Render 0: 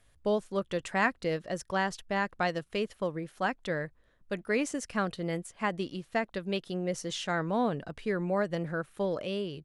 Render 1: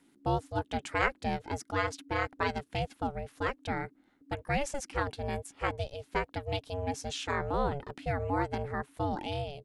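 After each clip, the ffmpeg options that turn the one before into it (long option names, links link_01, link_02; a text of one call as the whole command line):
ffmpeg -i in.wav -af "aeval=exprs='val(0)*sin(2*PI*280*n/s)':channel_layout=same,volume=1.5dB" out.wav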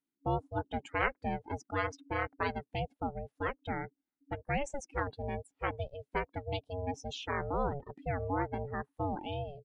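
ffmpeg -i in.wav -af "afftdn=noise_reduction=25:noise_floor=-40,volume=-2.5dB" out.wav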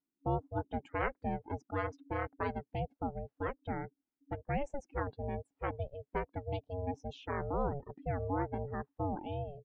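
ffmpeg -i in.wav -af "lowpass=frequency=1000:poles=1" out.wav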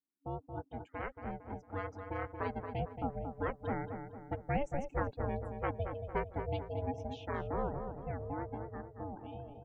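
ffmpeg -i in.wav -filter_complex "[0:a]dynaudnorm=framelen=220:gausssize=21:maxgain=9dB,asplit=2[link_01][link_02];[link_02]adelay=227,lowpass=frequency=1800:poles=1,volume=-6.5dB,asplit=2[link_03][link_04];[link_04]adelay=227,lowpass=frequency=1800:poles=1,volume=0.49,asplit=2[link_05][link_06];[link_06]adelay=227,lowpass=frequency=1800:poles=1,volume=0.49,asplit=2[link_07][link_08];[link_08]adelay=227,lowpass=frequency=1800:poles=1,volume=0.49,asplit=2[link_09][link_10];[link_10]adelay=227,lowpass=frequency=1800:poles=1,volume=0.49,asplit=2[link_11][link_12];[link_12]adelay=227,lowpass=frequency=1800:poles=1,volume=0.49[link_13];[link_03][link_05][link_07][link_09][link_11][link_13]amix=inputs=6:normalize=0[link_14];[link_01][link_14]amix=inputs=2:normalize=0,volume=-8dB" out.wav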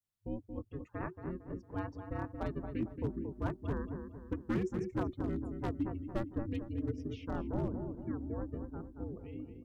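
ffmpeg -i in.wav -af "asoftclip=type=hard:threshold=-27dB,adynamicequalizer=threshold=0.00112:dfrequency=2400:dqfactor=1.1:tfrequency=2400:tqfactor=1.1:attack=5:release=100:ratio=0.375:range=2:mode=cutabove:tftype=bell,afreqshift=-380,volume=1dB" out.wav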